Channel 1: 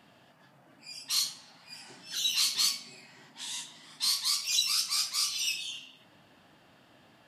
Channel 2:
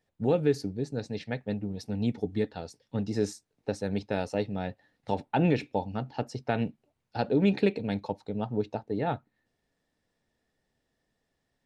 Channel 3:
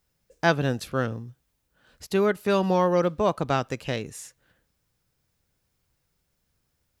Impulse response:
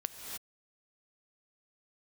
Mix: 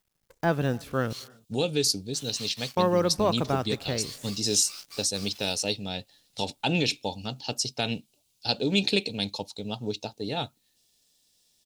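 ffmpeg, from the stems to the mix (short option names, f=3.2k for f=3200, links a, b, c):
-filter_complex "[0:a]highpass=950,aemphasis=mode=reproduction:type=50kf,aeval=exprs='val(0)*gte(abs(val(0)),0.0168)':c=same,volume=-8dB[a];[1:a]aexciter=amount=11.3:drive=5.4:freq=2.8k,adelay=1300,volume=-2.5dB[b];[2:a]deesser=0.95,acrusher=bits=9:dc=4:mix=0:aa=0.000001,volume=-2dB,asplit=3[c][d][e];[c]atrim=end=1.13,asetpts=PTS-STARTPTS,afade=t=out:st=1.126:d=0.004:c=hsin[f];[d]atrim=start=1.13:end=2.77,asetpts=PTS-STARTPTS,volume=0[g];[e]atrim=start=2.77,asetpts=PTS-STARTPTS,afade=t=in:d=0.004:c=hsin[h];[f][g][h]concat=n=3:v=0:a=1,asplit=2[i][j];[j]volume=-19.5dB[k];[3:a]atrim=start_sample=2205[l];[k][l]afir=irnorm=-1:irlink=0[m];[a][b][i][m]amix=inputs=4:normalize=0"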